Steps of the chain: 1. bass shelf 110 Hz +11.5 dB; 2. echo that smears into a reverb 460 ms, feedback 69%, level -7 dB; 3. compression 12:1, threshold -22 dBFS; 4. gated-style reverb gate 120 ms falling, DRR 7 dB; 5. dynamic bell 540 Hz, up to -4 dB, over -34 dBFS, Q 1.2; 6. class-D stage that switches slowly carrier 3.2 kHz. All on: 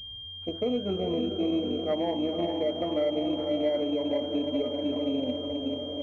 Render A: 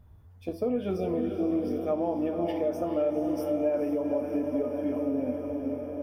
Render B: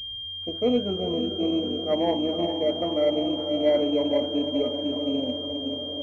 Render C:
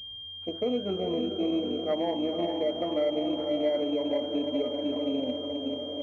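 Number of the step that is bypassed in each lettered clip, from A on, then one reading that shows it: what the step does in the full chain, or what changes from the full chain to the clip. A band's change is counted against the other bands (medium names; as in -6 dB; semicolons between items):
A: 6, 2 kHz band -2.0 dB; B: 3, mean gain reduction 2.0 dB; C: 1, 125 Hz band -4.0 dB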